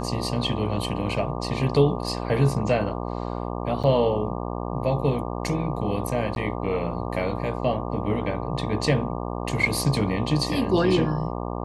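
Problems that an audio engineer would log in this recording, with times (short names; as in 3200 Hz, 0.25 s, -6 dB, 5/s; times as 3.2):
buzz 60 Hz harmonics 20 -30 dBFS
3.83–3.84 gap 7.1 ms
6.35–6.36 gap 11 ms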